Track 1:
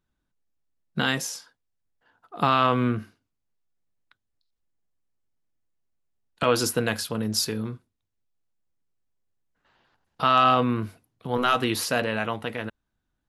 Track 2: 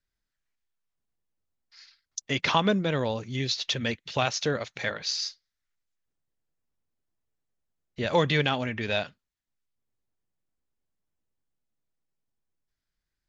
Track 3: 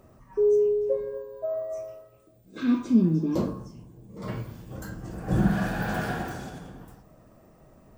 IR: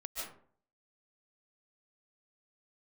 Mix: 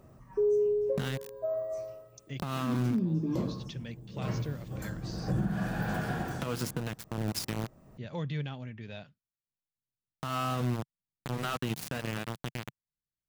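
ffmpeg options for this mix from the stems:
-filter_complex "[0:a]aeval=exprs='val(0)*gte(abs(val(0)),0.075)':c=same,volume=1.06[s0];[1:a]volume=0.112[s1];[2:a]equalizer=f=140:w=1.8:g=5.5,volume=0.75[s2];[s0][s1]amix=inputs=2:normalize=0,equalizer=f=140:w=0.81:g=14,acompressor=threshold=0.0794:ratio=5,volume=1[s3];[s2][s3]amix=inputs=2:normalize=0,alimiter=limit=0.0841:level=0:latency=1:release=342"

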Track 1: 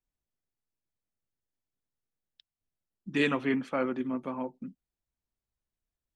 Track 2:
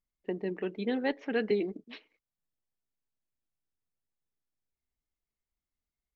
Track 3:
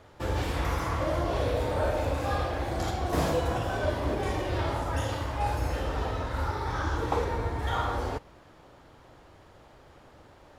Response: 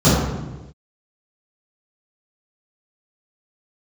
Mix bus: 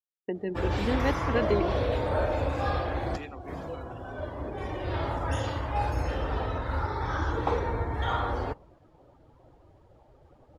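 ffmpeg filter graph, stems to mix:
-filter_complex "[0:a]highpass=220,volume=0.158,asplit=2[s0][s1];[1:a]volume=1.19[s2];[2:a]adelay=350,volume=1.06[s3];[s1]apad=whole_len=482310[s4];[s3][s4]sidechaincompress=threshold=0.00224:ratio=6:attack=36:release=1200[s5];[s0][s2][s5]amix=inputs=3:normalize=0,afftdn=nr=15:nf=-48,agate=range=0.0224:threshold=0.00158:ratio=3:detection=peak"

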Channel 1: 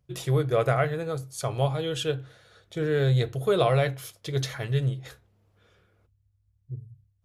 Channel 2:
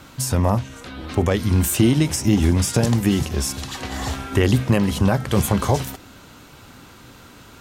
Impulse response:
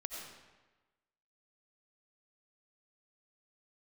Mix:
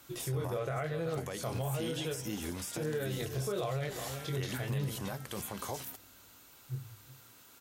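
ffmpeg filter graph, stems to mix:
-filter_complex "[0:a]flanger=delay=18:depth=7.1:speed=0.99,volume=0.891,asplit=2[s0][s1];[s1]volume=0.133[s2];[1:a]aemphasis=mode=production:type=bsi,volume=0.158[s3];[s2]aecho=0:1:373:1[s4];[s0][s3][s4]amix=inputs=3:normalize=0,acrossover=split=3300[s5][s6];[s6]acompressor=threshold=0.0112:ratio=4:attack=1:release=60[s7];[s5][s7]amix=inputs=2:normalize=0,alimiter=level_in=1.33:limit=0.0631:level=0:latency=1:release=76,volume=0.75"

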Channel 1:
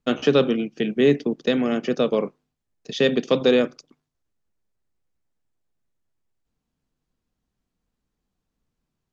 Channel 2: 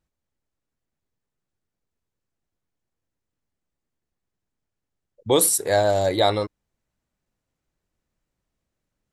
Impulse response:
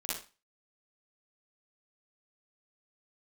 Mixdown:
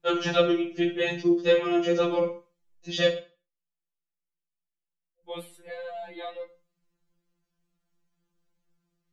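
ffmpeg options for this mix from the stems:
-filter_complex "[0:a]volume=1,asplit=3[s0][s1][s2];[s0]atrim=end=3.12,asetpts=PTS-STARTPTS,afade=t=out:st=3.116:d=0.004:c=hsin[s3];[s1]atrim=start=3.12:end=5.23,asetpts=PTS-STARTPTS,volume=0[s4];[s2]atrim=start=5.23,asetpts=PTS-STARTPTS,afade=t=in:d=0.004:c=hsin[s5];[s3][s4][s5]concat=n=3:v=0:a=1,asplit=2[s6][s7];[s7]volume=0.376[s8];[1:a]highshelf=f=4200:t=q:w=3:g=-13.5,volume=0.15,asplit=2[s9][s10];[s10]volume=0.158[s11];[2:a]atrim=start_sample=2205[s12];[s8][s11]amix=inputs=2:normalize=0[s13];[s13][s12]afir=irnorm=-1:irlink=0[s14];[s6][s9][s14]amix=inputs=3:normalize=0,afftfilt=real='re*2.83*eq(mod(b,8),0)':imag='im*2.83*eq(mod(b,8),0)':win_size=2048:overlap=0.75"

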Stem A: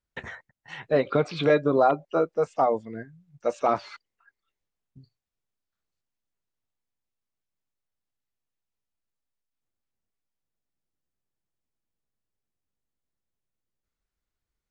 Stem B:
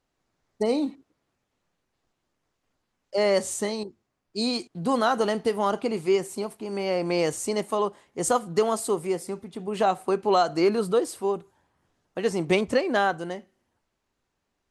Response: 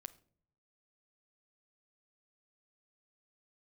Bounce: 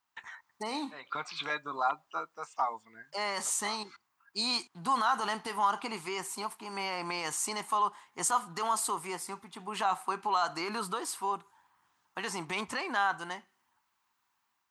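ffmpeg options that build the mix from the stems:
-filter_complex "[0:a]aemphasis=mode=production:type=bsi,volume=0.251,asplit=2[s0][s1];[s1]volume=0.188[s2];[1:a]highpass=f=160:p=1,alimiter=limit=0.112:level=0:latency=1:release=26,volume=0.668,asplit=2[s3][s4];[s4]apad=whole_len=648538[s5];[s0][s5]sidechaincompress=threshold=0.00501:ratio=8:attack=16:release=250[s6];[2:a]atrim=start_sample=2205[s7];[s2][s7]afir=irnorm=-1:irlink=0[s8];[s6][s3][s8]amix=inputs=3:normalize=0,lowshelf=f=720:t=q:w=3:g=-9.5,dynaudnorm=f=140:g=5:m=1.58"

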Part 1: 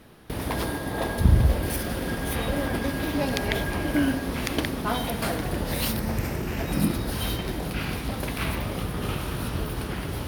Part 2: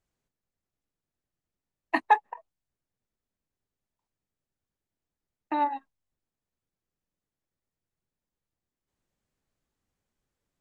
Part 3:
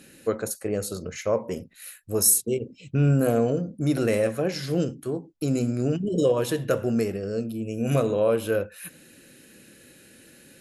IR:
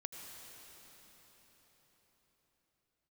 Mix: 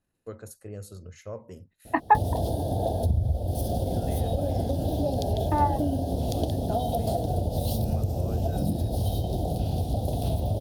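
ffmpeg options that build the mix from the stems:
-filter_complex "[0:a]firequalizer=gain_entry='entry(360,0);entry(710,11);entry(1100,-23);entry(2000,-30);entry(3400,-3)':delay=0.05:min_phase=1,adelay=1850,volume=1[s0];[1:a]lowpass=1500,volume=1.33,asplit=2[s1][s2];[2:a]agate=range=0.0891:threshold=0.00398:ratio=16:detection=peak,volume=0.178[s3];[s2]apad=whole_len=467654[s4];[s3][s4]sidechaincompress=threshold=0.0158:ratio=8:attack=16:release=1450[s5];[s0][s5]amix=inputs=2:normalize=0,equalizer=f=91:t=o:w=0.95:g=13.5,acompressor=threshold=0.0708:ratio=5,volume=1[s6];[s1][s6]amix=inputs=2:normalize=0,bandreject=f=2300:w=14"

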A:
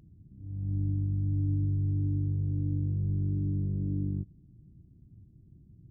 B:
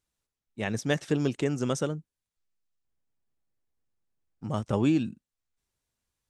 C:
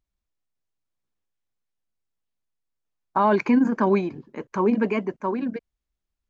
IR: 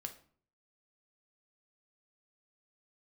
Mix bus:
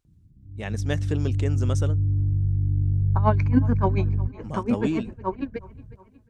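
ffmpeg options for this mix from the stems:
-filter_complex "[0:a]asubboost=boost=10.5:cutoff=90,adynamicsmooth=sensitivity=0.5:basefreq=530,adelay=50,volume=0.891,asplit=2[s0][s1];[s1]volume=0.112[s2];[1:a]volume=0.75[s3];[2:a]aeval=exprs='val(0)*pow(10,-25*(0.5-0.5*cos(2*PI*7*n/s))/20)':c=same,volume=1.19,asplit=2[s4][s5];[s5]volume=0.0841[s6];[s2][s6]amix=inputs=2:normalize=0,aecho=0:1:364|728|1092|1456|1820|2184|2548|2912|3276:1|0.57|0.325|0.185|0.106|0.0602|0.0343|0.0195|0.0111[s7];[s0][s3][s4][s7]amix=inputs=4:normalize=0"

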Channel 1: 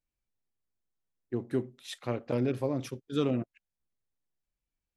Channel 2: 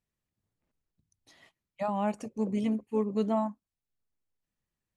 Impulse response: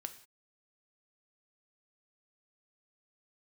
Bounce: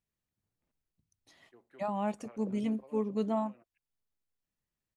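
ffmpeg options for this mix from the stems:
-filter_complex "[0:a]highpass=f=320:p=1,acrossover=split=560 3000:gain=0.2 1 0.224[s0][s1][s2];[s0][s1][s2]amix=inputs=3:normalize=0,adelay=200,volume=0.178[s3];[1:a]volume=0.708,asplit=2[s4][s5];[s5]apad=whole_len=227571[s6];[s3][s6]sidechaincompress=threshold=0.02:ratio=8:attack=16:release=423[s7];[s7][s4]amix=inputs=2:normalize=0"

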